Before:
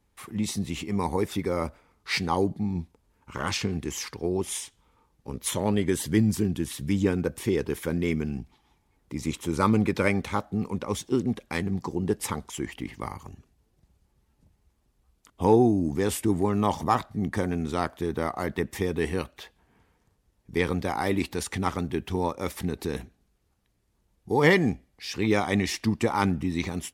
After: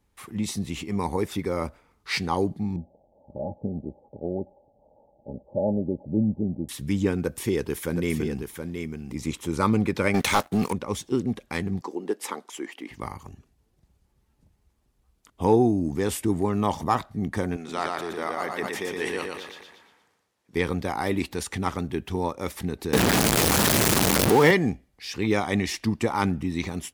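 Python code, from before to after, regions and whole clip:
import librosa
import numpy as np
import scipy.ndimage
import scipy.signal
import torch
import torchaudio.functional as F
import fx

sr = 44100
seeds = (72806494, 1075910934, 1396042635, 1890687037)

y = fx.chain(x, sr, fx.crossing_spikes(level_db=-25.5),
    fx.cheby_ripple(hz=850.0, ripple_db=6),
    fx.peak_eq(hz=570.0, db=11.5, octaves=0.36), at=(2.76, 6.69))
y = fx.chain(y, sr, fx.high_shelf(hz=6200.0, db=6.0),
    fx.echo_single(ms=722, db=-6.5), at=(7.22, 9.16))
y = fx.chain(y, sr, fx.tilt_eq(slope=2.5),
    fx.leveller(passes=3), at=(10.14, 10.73))
y = fx.chain(y, sr, fx.highpass(hz=280.0, slope=24),
    fx.high_shelf(hz=4700.0, db=-4.0), at=(11.81, 12.91))
y = fx.chain(y, sr, fx.weighting(curve='A'),
    fx.echo_feedback(ms=118, feedback_pct=39, wet_db=-3.0),
    fx.sustainer(db_per_s=45.0), at=(17.56, 20.55))
y = fx.chain(y, sr, fx.zero_step(step_db=-24.5),
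    fx.highpass(hz=140.0, slope=12),
    fx.env_flatten(amount_pct=70), at=(22.93, 24.51))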